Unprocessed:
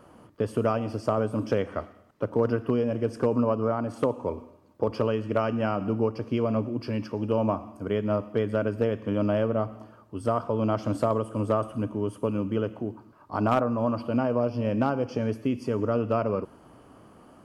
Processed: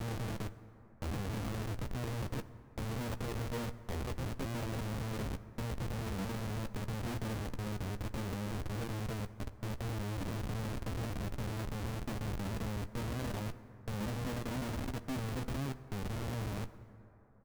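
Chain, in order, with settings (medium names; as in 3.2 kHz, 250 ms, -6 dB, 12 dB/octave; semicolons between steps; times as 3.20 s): slices played last to first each 185 ms, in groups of 5; gate -39 dBFS, range -17 dB; RIAA curve playback; compression 12:1, threshold -27 dBFS, peak gain reduction 15 dB; peak limiter -27 dBFS, peak gain reduction 12 dB; small samples zeroed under -41.5 dBFS; bass shelf 250 Hz -4 dB; Schmitt trigger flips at -39 dBFS; doubling 15 ms -10.5 dB; plate-style reverb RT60 3.4 s, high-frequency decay 0.35×, DRR 13.5 dB; trim +1.5 dB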